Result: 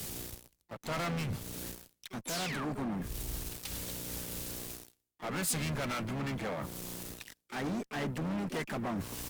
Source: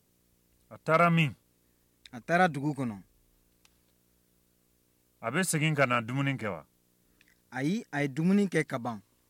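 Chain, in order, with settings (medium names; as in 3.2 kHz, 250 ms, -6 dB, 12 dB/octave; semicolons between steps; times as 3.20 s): reverse; upward compressor, threshold -28 dBFS; reverse; waveshaping leveller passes 5; compression 12:1, threshold -28 dBFS, peak gain reduction 14 dB; valve stage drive 24 dB, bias 0.3; painted sound fall, 2.27–2.65 s, 960–7800 Hz -35 dBFS; harmony voices -12 st -17 dB, -3 st -12 dB, +7 st -8 dB; wavefolder -27 dBFS; three bands expanded up and down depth 70%; trim -3.5 dB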